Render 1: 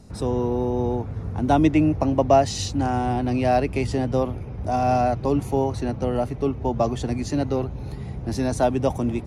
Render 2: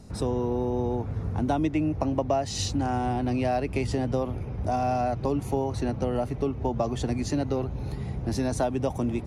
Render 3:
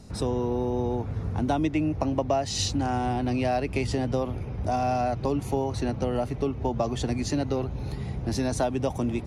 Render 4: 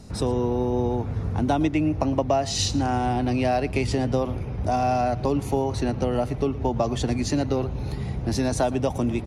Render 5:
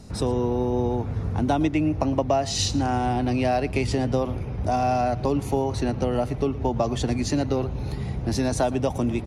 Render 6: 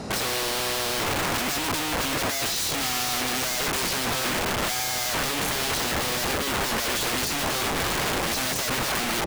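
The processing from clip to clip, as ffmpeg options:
-af "acompressor=threshold=-23dB:ratio=4"
-af "equalizer=f=3.9k:t=o:w=2.1:g=3.5"
-af "aecho=1:1:114:0.106,volume=3dB"
-af anull
-filter_complex "[0:a]asplit=2[a][b];[b]highpass=f=720:p=1,volume=31dB,asoftclip=type=tanh:threshold=-8dB[c];[a][c]amix=inputs=2:normalize=0,lowpass=f=1.6k:p=1,volume=-6dB,aeval=exprs='(mod(7.94*val(0)+1,2)-1)/7.94':c=same,volume=-3.5dB"

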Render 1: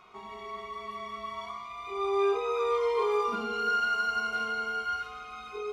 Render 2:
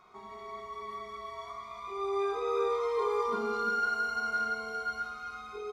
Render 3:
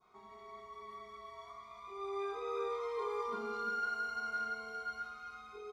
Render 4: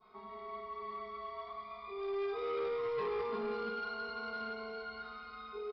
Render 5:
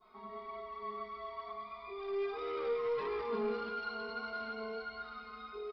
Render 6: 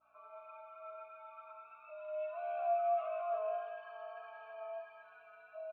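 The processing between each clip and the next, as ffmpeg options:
-filter_complex "[0:a]equalizer=f=2.8k:t=o:w=0.32:g=-13.5,asplit=2[a][b];[b]aecho=0:1:59|340:0.316|0.501[c];[a][c]amix=inputs=2:normalize=0,volume=-3dB"
-af "adynamicequalizer=threshold=0.00891:dfrequency=2200:dqfactor=0.81:tfrequency=2200:tqfactor=0.81:attack=5:release=100:ratio=0.375:range=1.5:mode=boostabove:tftype=bell,volume=-8.5dB"
-af "aecho=1:1:4.6:0.62,aresample=11025,asoftclip=type=tanh:threshold=-35.5dB,aresample=44100,aecho=1:1:1035:0.0944,volume=3.5dB"
-af "flanger=delay=2.9:depth=1.8:regen=34:speed=1.6:shape=sinusoidal,volume=4dB"
-filter_complex "[0:a]highpass=f=280:t=q:w=0.5412,highpass=f=280:t=q:w=1.307,lowpass=f=3.1k:t=q:w=0.5176,lowpass=f=3.1k:t=q:w=0.7071,lowpass=f=3.1k:t=q:w=1.932,afreqshift=220,aeval=exprs='val(0)+0.000562*(sin(2*PI*60*n/s)+sin(2*PI*2*60*n/s)/2+sin(2*PI*3*60*n/s)/3+sin(2*PI*4*60*n/s)/4+sin(2*PI*5*60*n/s)/5)':c=same,asplit=3[a][b][c];[a]bandpass=f=730:t=q:w=8,volume=0dB[d];[b]bandpass=f=1.09k:t=q:w=8,volume=-6dB[e];[c]bandpass=f=2.44k:t=q:w=8,volume=-9dB[f];[d][e][f]amix=inputs=3:normalize=0,volume=4dB"

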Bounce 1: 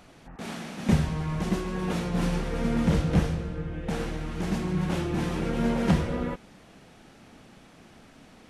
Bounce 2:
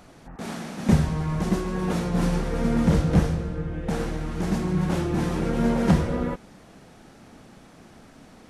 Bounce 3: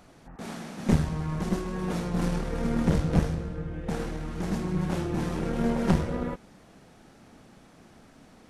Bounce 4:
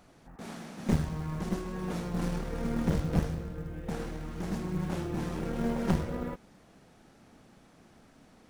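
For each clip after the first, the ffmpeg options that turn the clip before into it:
-af "equalizer=f=2.8k:t=o:w=1.1:g=-5,volume=3.5dB"
-af "aeval=exprs='(tanh(2.82*val(0)+0.75)-tanh(0.75))/2.82':c=same"
-af "acrusher=bits=8:mode=log:mix=0:aa=0.000001,volume=-4.5dB"

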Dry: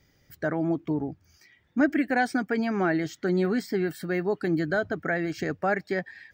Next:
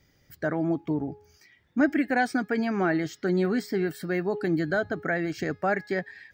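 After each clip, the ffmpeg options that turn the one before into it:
-af "bandreject=f=418.5:t=h:w=4,bandreject=f=837:t=h:w=4,bandreject=f=1.2555k:t=h:w=4,bandreject=f=1.674k:t=h:w=4,bandreject=f=2.0925k:t=h:w=4,bandreject=f=2.511k:t=h:w=4,bandreject=f=2.9295k:t=h:w=4,bandreject=f=3.348k:t=h:w=4,bandreject=f=3.7665k:t=h:w=4,bandreject=f=4.185k:t=h:w=4,bandreject=f=4.6035k:t=h:w=4,bandreject=f=5.022k:t=h:w=4,bandreject=f=5.4405k:t=h:w=4,bandreject=f=5.859k:t=h:w=4"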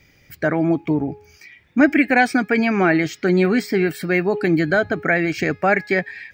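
-af "equalizer=f=2.4k:t=o:w=0.36:g=12.5,volume=8dB"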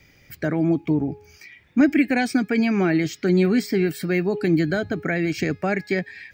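-filter_complex "[0:a]acrossover=split=400|3000[a][b][c];[b]acompressor=threshold=-45dB:ratio=1.5[d];[a][d][c]amix=inputs=3:normalize=0"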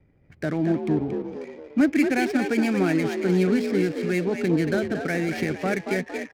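-filter_complex "[0:a]asplit=7[a][b][c][d][e][f][g];[b]adelay=229,afreqshift=55,volume=-6.5dB[h];[c]adelay=458,afreqshift=110,volume=-13.1dB[i];[d]adelay=687,afreqshift=165,volume=-19.6dB[j];[e]adelay=916,afreqshift=220,volume=-26.2dB[k];[f]adelay=1145,afreqshift=275,volume=-32.7dB[l];[g]adelay=1374,afreqshift=330,volume=-39.3dB[m];[a][h][i][j][k][l][m]amix=inputs=7:normalize=0,adynamicsmooth=sensitivity=7.5:basefreq=670,volume=-3dB"

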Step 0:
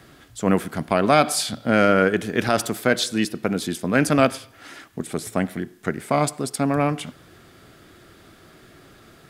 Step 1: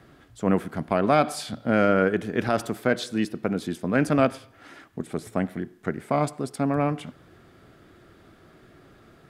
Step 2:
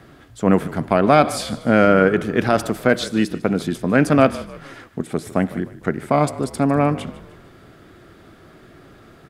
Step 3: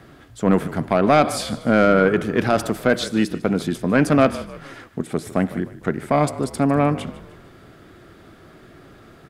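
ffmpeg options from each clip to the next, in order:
-af "highshelf=f=2.7k:g=-10.5,volume=-2.5dB"
-filter_complex "[0:a]asplit=5[a][b][c][d][e];[b]adelay=151,afreqshift=-41,volume=-17.5dB[f];[c]adelay=302,afreqshift=-82,volume=-24.2dB[g];[d]adelay=453,afreqshift=-123,volume=-31dB[h];[e]adelay=604,afreqshift=-164,volume=-37.7dB[i];[a][f][g][h][i]amix=inputs=5:normalize=0,volume=6.5dB"
-af "asoftclip=type=tanh:threshold=-5dB"

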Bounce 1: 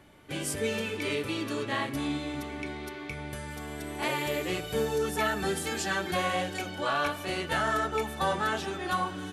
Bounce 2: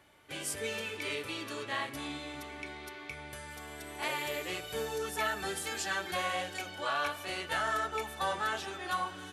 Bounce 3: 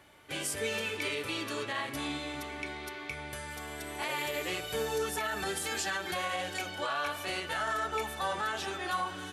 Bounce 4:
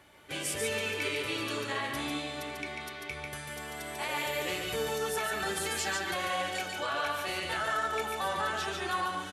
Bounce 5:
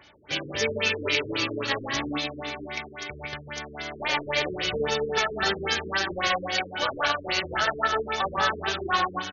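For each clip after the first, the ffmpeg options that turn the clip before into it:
-af "highpass=68,equalizer=f=190:w=0.54:g=-10.5,volume=-2.5dB"
-af "alimiter=level_in=3.5dB:limit=-24dB:level=0:latency=1:release=67,volume=-3.5dB,volume=4dB"
-af "aecho=1:1:144:0.631"
-af "aeval=exprs='0.106*(cos(1*acos(clip(val(0)/0.106,-1,1)))-cos(1*PI/2))+0.00596*(cos(7*acos(clip(val(0)/0.106,-1,1)))-cos(7*PI/2))':c=same,crystalizer=i=3.5:c=0,afftfilt=real='re*lt(b*sr/1024,460*pow(6900/460,0.5+0.5*sin(2*PI*3.7*pts/sr)))':imag='im*lt(b*sr/1024,460*pow(6900/460,0.5+0.5*sin(2*PI*3.7*pts/sr)))':win_size=1024:overlap=0.75,volume=7dB"

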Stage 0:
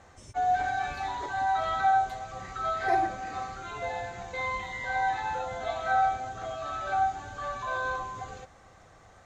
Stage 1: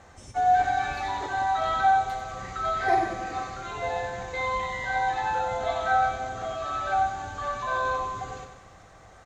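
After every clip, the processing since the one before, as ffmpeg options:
-af "aecho=1:1:93|186|279|372|465|558|651:0.398|0.223|0.125|0.0699|0.0392|0.0219|0.0123,volume=3dB"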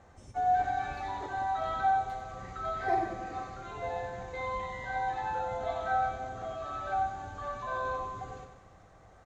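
-af "tiltshelf=f=1.3k:g=4,volume=-8dB"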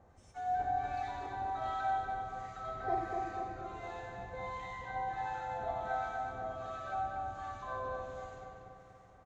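-filter_complex "[0:a]acrossover=split=1100[a][b];[a]aeval=exprs='val(0)*(1-0.7/2+0.7/2*cos(2*PI*1.4*n/s))':c=same[c];[b]aeval=exprs='val(0)*(1-0.7/2-0.7/2*cos(2*PI*1.4*n/s))':c=same[d];[c][d]amix=inputs=2:normalize=0,asplit=2[e][f];[f]adelay=241,lowpass=f=3.7k:p=1,volume=-3.5dB,asplit=2[g][h];[h]adelay=241,lowpass=f=3.7k:p=1,volume=0.54,asplit=2[i][j];[j]adelay=241,lowpass=f=3.7k:p=1,volume=0.54,asplit=2[k][l];[l]adelay=241,lowpass=f=3.7k:p=1,volume=0.54,asplit=2[m][n];[n]adelay=241,lowpass=f=3.7k:p=1,volume=0.54,asplit=2[o][p];[p]adelay=241,lowpass=f=3.7k:p=1,volume=0.54,asplit=2[q][r];[r]adelay=241,lowpass=f=3.7k:p=1,volume=0.54[s];[e][g][i][k][m][o][q][s]amix=inputs=8:normalize=0,volume=-3.5dB"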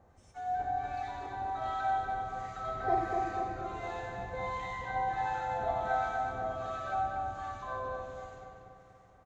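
-af "dynaudnorm=f=240:g=17:m=5dB"

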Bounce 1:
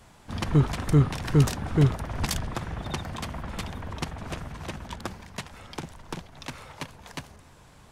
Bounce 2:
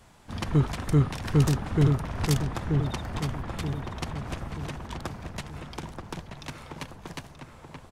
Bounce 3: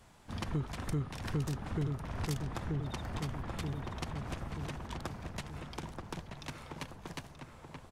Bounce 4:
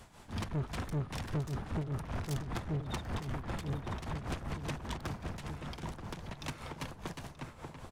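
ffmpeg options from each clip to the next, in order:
-filter_complex "[0:a]asplit=2[a][b];[b]adelay=930,lowpass=f=1.6k:p=1,volume=-4dB,asplit=2[c][d];[d]adelay=930,lowpass=f=1.6k:p=1,volume=0.46,asplit=2[e][f];[f]adelay=930,lowpass=f=1.6k:p=1,volume=0.46,asplit=2[g][h];[h]adelay=930,lowpass=f=1.6k:p=1,volume=0.46,asplit=2[i][j];[j]adelay=930,lowpass=f=1.6k:p=1,volume=0.46,asplit=2[k][l];[l]adelay=930,lowpass=f=1.6k:p=1,volume=0.46[m];[a][c][e][g][i][k][m]amix=inputs=7:normalize=0,volume=-2dB"
-af "acompressor=threshold=-29dB:ratio=3,volume=-4.5dB"
-af "asoftclip=type=tanh:threshold=-36.5dB,tremolo=f=5.1:d=0.67,volume=7dB"

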